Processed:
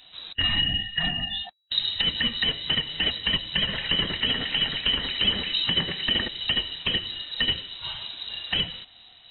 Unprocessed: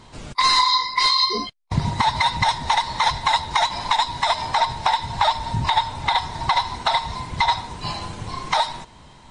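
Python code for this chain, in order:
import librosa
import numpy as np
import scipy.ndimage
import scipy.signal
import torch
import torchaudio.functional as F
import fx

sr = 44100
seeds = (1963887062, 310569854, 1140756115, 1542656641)

y = fx.echo_stepped(x, sr, ms=112, hz=2700.0, octaves=-0.7, feedback_pct=70, wet_db=0.0, at=(3.67, 6.27), fade=0.02)
y = fx.freq_invert(y, sr, carrier_hz=3900)
y = y * 10.0 ** (-5.5 / 20.0)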